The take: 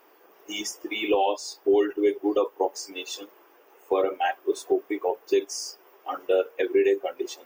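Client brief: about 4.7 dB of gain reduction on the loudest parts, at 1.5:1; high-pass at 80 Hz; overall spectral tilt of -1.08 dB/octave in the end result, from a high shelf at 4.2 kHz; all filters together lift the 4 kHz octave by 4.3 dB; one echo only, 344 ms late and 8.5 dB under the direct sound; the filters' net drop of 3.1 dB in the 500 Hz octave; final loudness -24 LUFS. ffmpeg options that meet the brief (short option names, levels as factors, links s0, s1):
-af "highpass=80,equalizer=f=500:t=o:g=-4,equalizer=f=4000:t=o:g=9,highshelf=f=4200:g=-5,acompressor=threshold=0.0224:ratio=1.5,aecho=1:1:344:0.376,volume=2.51"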